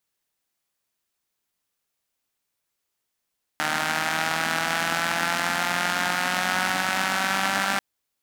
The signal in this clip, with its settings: four-cylinder engine model, changing speed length 4.19 s, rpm 4600, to 5900, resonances 250/800/1400 Hz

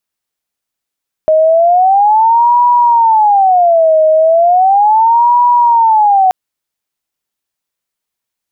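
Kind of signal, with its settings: siren wail 627–970 Hz 0.36/s sine -5 dBFS 5.03 s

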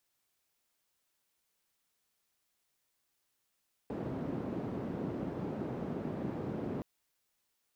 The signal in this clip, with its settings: noise band 140–300 Hz, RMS -38 dBFS 2.92 s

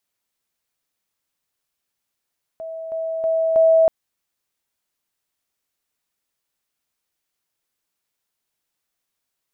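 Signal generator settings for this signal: level ladder 650 Hz -28.5 dBFS, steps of 6 dB, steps 4, 0.32 s 0.00 s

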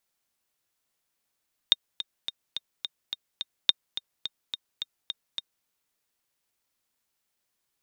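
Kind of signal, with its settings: metronome 213 bpm, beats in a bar 7, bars 2, 3680 Hz, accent 13.5 dB -4.5 dBFS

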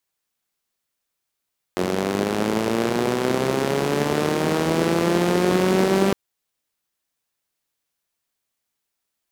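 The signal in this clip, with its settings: four-cylinder engine model, changing speed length 4.36 s, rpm 2700, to 5900, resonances 220/360 Hz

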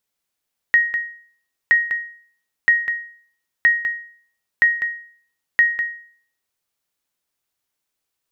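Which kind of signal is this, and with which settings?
sonar ping 1880 Hz, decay 0.52 s, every 0.97 s, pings 6, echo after 0.20 s, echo -10 dB -7 dBFS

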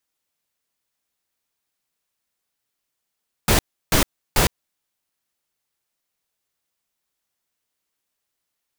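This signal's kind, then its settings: noise bursts pink, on 0.11 s, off 0.33 s, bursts 3, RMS -16 dBFS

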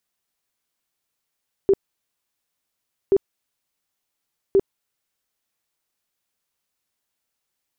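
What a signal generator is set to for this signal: tone bursts 392 Hz, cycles 18, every 1.43 s, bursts 3, -11.5 dBFS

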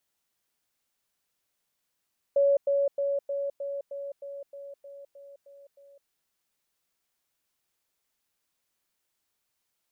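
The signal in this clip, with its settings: level ladder 561 Hz -18.5 dBFS, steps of -3 dB, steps 12, 0.21 s 0.10 s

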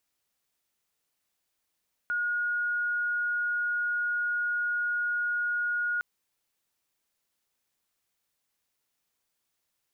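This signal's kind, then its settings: tone sine 1440 Hz -26 dBFS 3.91 s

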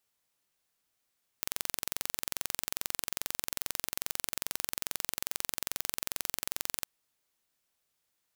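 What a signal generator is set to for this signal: pulse train 22.4/s, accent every 0, -4.5 dBFS 5.42 s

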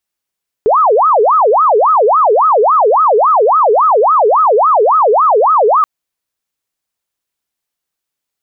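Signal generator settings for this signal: siren wail 412–1290 Hz 3.6/s sine -6 dBFS 5.18 s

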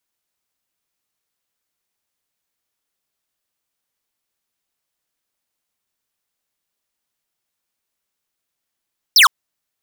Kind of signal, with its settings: laser zap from 5900 Hz, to 970 Hz, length 0.11 s square, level -8.5 dB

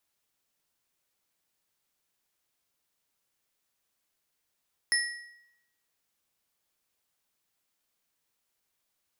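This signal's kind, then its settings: metal hit bar, lowest mode 1910 Hz, modes 3, decay 0.83 s, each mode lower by 2 dB, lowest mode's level -23 dB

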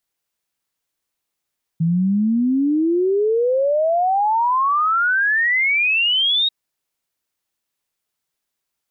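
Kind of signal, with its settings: log sweep 160 Hz -> 3800 Hz 4.69 s -14.5 dBFS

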